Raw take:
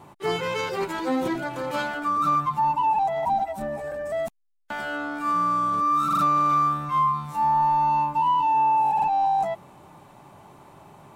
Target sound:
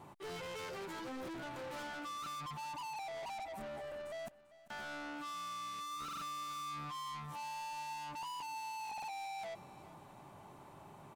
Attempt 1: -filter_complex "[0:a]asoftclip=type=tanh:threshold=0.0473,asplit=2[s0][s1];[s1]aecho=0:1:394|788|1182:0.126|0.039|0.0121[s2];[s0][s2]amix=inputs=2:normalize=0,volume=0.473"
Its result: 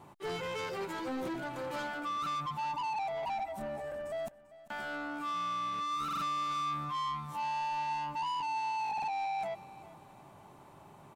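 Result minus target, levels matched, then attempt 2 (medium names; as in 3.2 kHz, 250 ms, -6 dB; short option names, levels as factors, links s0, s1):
saturation: distortion -5 dB
-filter_complex "[0:a]asoftclip=type=tanh:threshold=0.015,asplit=2[s0][s1];[s1]aecho=0:1:394|788|1182:0.126|0.039|0.0121[s2];[s0][s2]amix=inputs=2:normalize=0,volume=0.473"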